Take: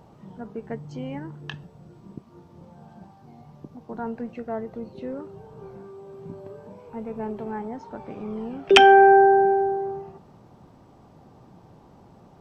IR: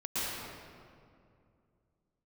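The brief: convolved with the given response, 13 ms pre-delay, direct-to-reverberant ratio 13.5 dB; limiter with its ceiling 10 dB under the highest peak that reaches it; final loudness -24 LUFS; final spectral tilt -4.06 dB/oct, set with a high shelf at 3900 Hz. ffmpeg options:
-filter_complex "[0:a]highshelf=f=3.9k:g=-8.5,alimiter=limit=-12.5dB:level=0:latency=1,asplit=2[a][b];[1:a]atrim=start_sample=2205,adelay=13[c];[b][c]afir=irnorm=-1:irlink=0,volume=-20.5dB[d];[a][d]amix=inputs=2:normalize=0,volume=2.5dB"

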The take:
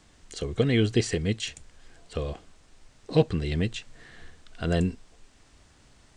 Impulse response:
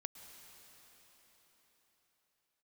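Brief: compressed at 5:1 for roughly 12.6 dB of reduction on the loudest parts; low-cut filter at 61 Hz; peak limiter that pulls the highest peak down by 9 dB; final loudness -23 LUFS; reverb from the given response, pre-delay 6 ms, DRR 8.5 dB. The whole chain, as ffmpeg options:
-filter_complex "[0:a]highpass=61,acompressor=threshold=-30dB:ratio=5,alimiter=level_in=2dB:limit=-24dB:level=0:latency=1,volume=-2dB,asplit=2[a][b];[1:a]atrim=start_sample=2205,adelay=6[c];[b][c]afir=irnorm=-1:irlink=0,volume=-5dB[d];[a][d]amix=inputs=2:normalize=0,volume=15.5dB"

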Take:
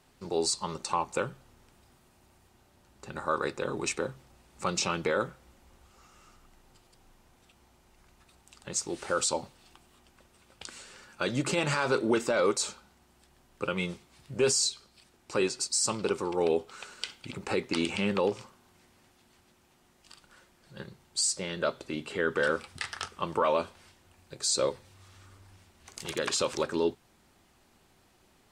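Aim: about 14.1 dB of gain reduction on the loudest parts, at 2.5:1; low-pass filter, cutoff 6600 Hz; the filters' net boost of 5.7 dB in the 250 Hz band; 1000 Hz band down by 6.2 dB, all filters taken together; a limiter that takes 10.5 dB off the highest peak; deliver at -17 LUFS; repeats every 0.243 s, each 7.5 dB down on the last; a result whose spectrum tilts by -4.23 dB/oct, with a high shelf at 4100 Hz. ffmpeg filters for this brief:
-af "lowpass=6.6k,equalizer=f=250:t=o:g=8.5,equalizer=f=1k:t=o:g=-8,highshelf=f=4.1k:g=-5.5,acompressor=threshold=-41dB:ratio=2.5,alimiter=level_in=6.5dB:limit=-24dB:level=0:latency=1,volume=-6.5dB,aecho=1:1:243|486|729|972|1215:0.422|0.177|0.0744|0.0312|0.0131,volume=26dB"

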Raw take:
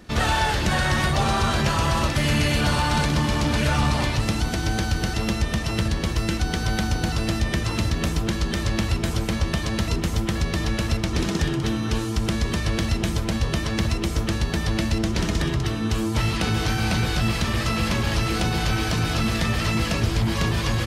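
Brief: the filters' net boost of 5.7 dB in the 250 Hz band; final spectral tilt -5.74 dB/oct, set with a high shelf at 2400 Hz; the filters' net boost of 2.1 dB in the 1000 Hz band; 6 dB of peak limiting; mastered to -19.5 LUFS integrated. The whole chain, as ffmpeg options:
-af "equalizer=f=250:t=o:g=7.5,equalizer=f=1k:t=o:g=3,highshelf=f=2.4k:g=-4.5,volume=4dB,alimiter=limit=-10.5dB:level=0:latency=1"

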